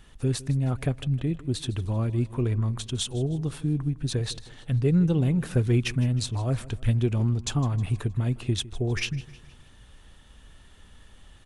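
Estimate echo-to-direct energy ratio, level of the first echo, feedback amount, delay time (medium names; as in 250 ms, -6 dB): -18.0 dB, -19.0 dB, 48%, 157 ms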